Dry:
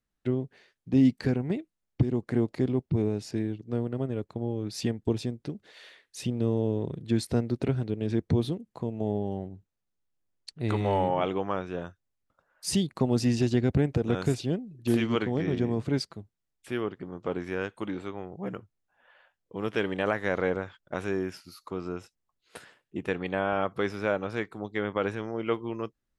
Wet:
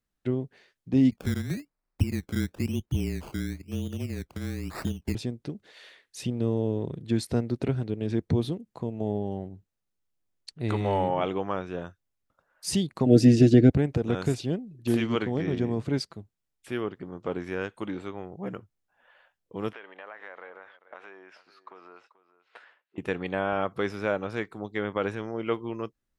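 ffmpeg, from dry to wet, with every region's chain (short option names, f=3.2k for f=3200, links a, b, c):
-filter_complex "[0:a]asettb=1/sr,asplit=3[a][b][c];[a]atrim=end=1.114[d];[b]atrim=start=1.11:end=5.15,asetpts=PTS-STARTPTS,afade=t=in:d=0.004:c=qsin,afade=t=out:st=4.036:d=0.004:c=qsin,afreqshift=-28,acrossover=split=280|3000[e][f][g];[f]acompressor=threshold=-47dB:ratio=2.5:attack=3.2:release=140:knee=2.83:detection=peak[h];[e][h][g]amix=inputs=3:normalize=0,acrusher=samples=19:mix=1:aa=0.000001:lfo=1:lforange=11.4:lforate=1[i];[c]atrim=start=5.146[j];[d][i]acrossfade=d=0.004:c1=hsin:c2=qsin[k];[k][j]acrossfade=d=0.004:c1=qsin:c2=hsin,asettb=1/sr,asplit=3[l][m][n];[l]atrim=end=13.064[o];[m]atrim=start=13.06:end=13.7,asetpts=PTS-STARTPTS,afade=t=in:d=0.004:c=qsin,afade=t=out:st=0.636:d=0.004:c=qsin,asuperstop=centerf=1000:order=8:qfactor=1.6,equalizer=f=270:t=o:w=2.2:g=12,aecho=1:1:6.5:0.46,atrim=end_sample=28224[p];[n]atrim=start=13.696[q];[o][p]acrossfade=d=0.004:c1=hsin:c2=qsin[r];[r][q]acrossfade=d=0.004:c1=qsin:c2=hsin,asettb=1/sr,asplit=3[s][t][u];[s]atrim=end=19.734[v];[t]atrim=start=19.73:end=22.98,asetpts=PTS-STARTPTS,afade=t=in:d=0.004:c=qsin,afade=t=out:st=3.246:d=0.004:c=qsin,acompressor=threshold=-34dB:ratio=5:attack=3.2:release=140:knee=1:detection=peak,highpass=740,lowpass=2.4k,aecho=1:1:436:0.15,atrim=end_sample=143325[w];[u]atrim=start=22.976[x];[v][w]acrossfade=d=0.004:c1=hsin:c2=qsin[y];[y][x]acrossfade=d=0.004:c1=qsin:c2=hsin"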